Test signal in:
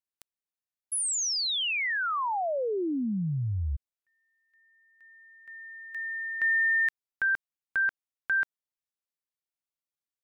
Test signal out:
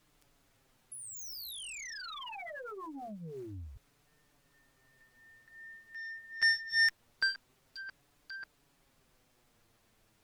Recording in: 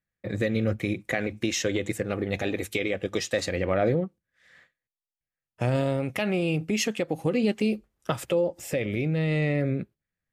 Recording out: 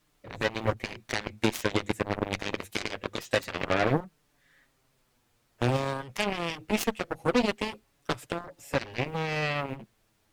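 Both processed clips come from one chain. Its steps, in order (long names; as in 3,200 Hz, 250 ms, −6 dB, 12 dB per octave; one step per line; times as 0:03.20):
background noise pink −62 dBFS
flanger 0.24 Hz, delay 6.6 ms, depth 3.1 ms, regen 0%
harmonic generator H 4 −36 dB, 5 −20 dB, 7 −11 dB, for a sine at −13.5 dBFS
level +2 dB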